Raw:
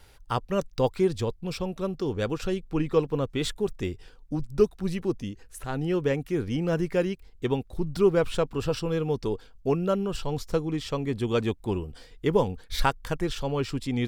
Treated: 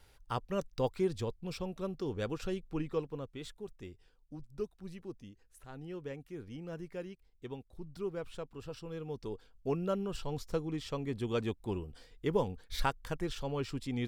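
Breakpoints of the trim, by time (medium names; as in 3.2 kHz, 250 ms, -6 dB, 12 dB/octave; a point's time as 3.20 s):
2.65 s -8 dB
3.46 s -17 dB
8.69 s -17 dB
9.78 s -8 dB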